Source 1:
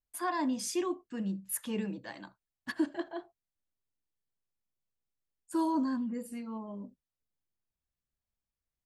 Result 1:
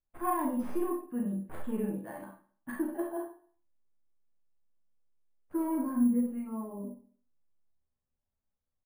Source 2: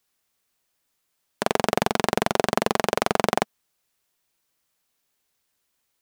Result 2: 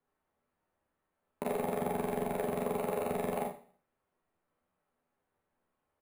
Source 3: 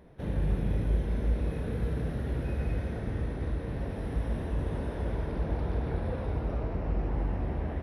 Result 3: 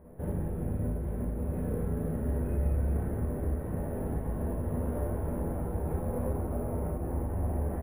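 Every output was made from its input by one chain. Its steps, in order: tracing distortion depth 0.09 ms; low-pass 1.1 kHz 12 dB/octave; compression 3:1, threshold -29 dBFS; saturation -24 dBFS; doubling 12 ms -6 dB; feedback delay 71 ms, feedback 52%, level -21 dB; Schroeder reverb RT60 0.36 s, combs from 29 ms, DRR -0.5 dB; careless resampling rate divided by 4×, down filtered, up hold

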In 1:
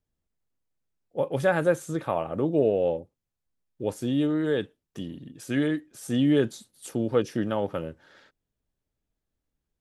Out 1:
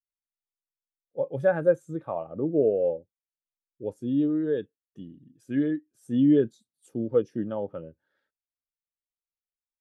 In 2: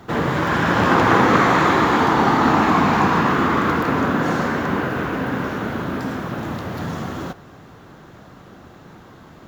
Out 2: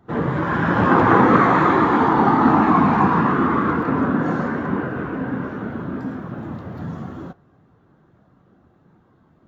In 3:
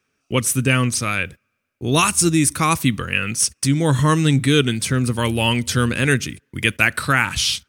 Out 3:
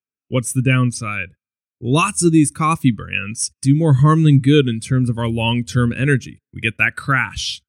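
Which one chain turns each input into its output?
spectral contrast expander 1.5:1

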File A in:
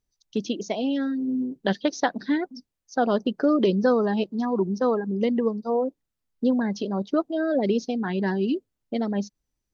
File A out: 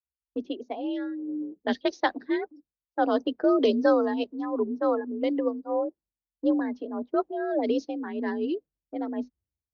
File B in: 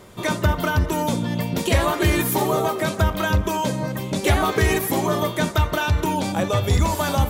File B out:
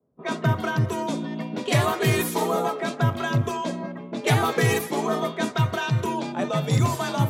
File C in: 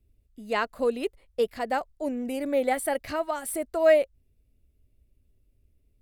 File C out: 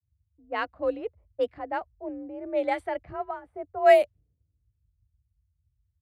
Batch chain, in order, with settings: level-controlled noise filter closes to 460 Hz, open at -16 dBFS; frequency shift +46 Hz; three bands expanded up and down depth 70%; trim -3 dB

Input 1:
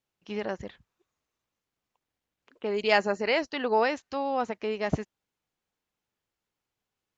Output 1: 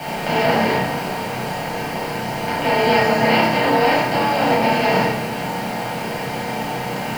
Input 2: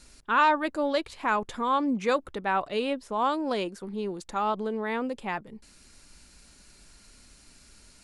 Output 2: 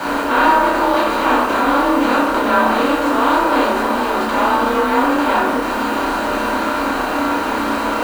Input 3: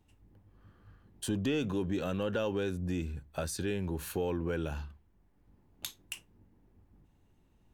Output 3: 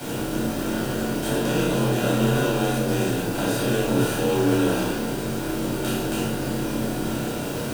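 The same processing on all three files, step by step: spectral levelling over time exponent 0.2; frequency shift +33 Hz; word length cut 6-bit, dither none; flutter echo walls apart 5.4 m, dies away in 0.3 s; simulated room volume 910 m³, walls furnished, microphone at 7.9 m; trim -8 dB

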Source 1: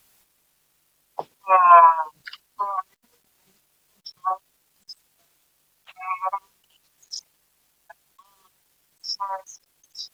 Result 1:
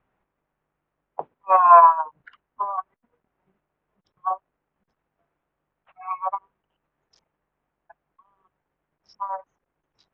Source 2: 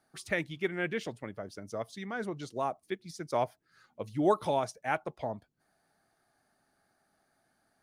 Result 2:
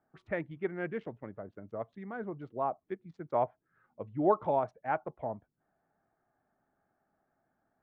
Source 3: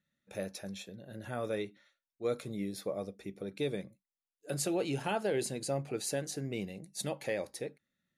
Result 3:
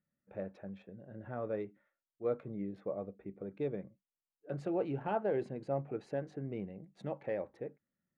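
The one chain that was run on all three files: local Wiener filter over 9 samples; low-pass 1.5 kHz 12 dB/octave; dynamic bell 810 Hz, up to +4 dB, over -35 dBFS, Q 0.8; trim -2.5 dB

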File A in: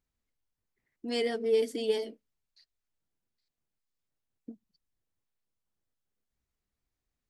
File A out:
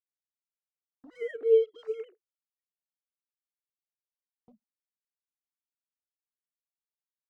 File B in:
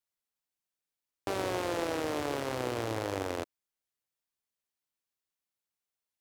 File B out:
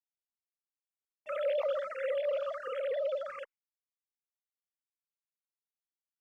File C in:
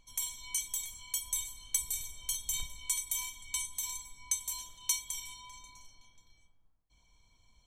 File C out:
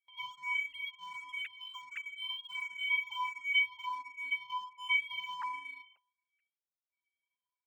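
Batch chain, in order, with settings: formants replaced by sine waves; in parallel at -6 dB: crossover distortion -49.5 dBFS; on the sum: gate with hold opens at -47 dBFS; barber-pole phaser +1.4 Hz

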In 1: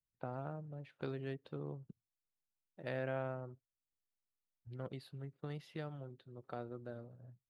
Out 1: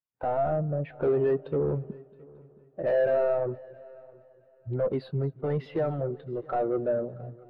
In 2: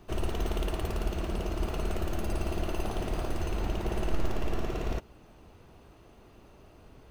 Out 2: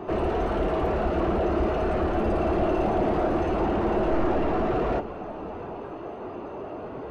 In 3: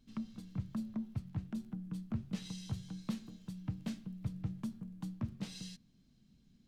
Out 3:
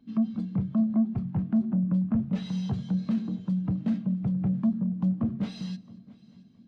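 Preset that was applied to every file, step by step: overdrive pedal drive 40 dB, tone 1 kHz, clips at -14.5 dBFS; multi-head delay 223 ms, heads first and third, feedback 53%, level -17 dB; spectral contrast expander 1.5:1

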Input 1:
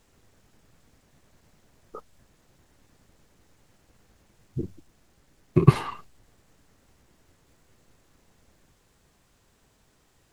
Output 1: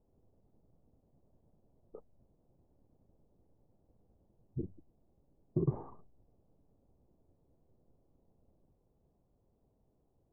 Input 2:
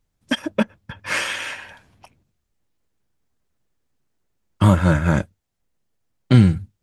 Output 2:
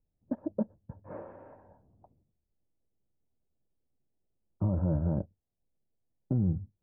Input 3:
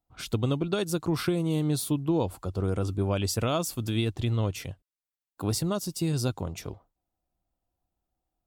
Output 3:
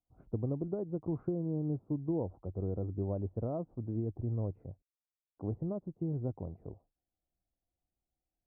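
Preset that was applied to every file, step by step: inverse Chebyshev low-pass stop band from 4.3 kHz, stop band 80 dB; peak limiter -12.5 dBFS; trim -7.5 dB

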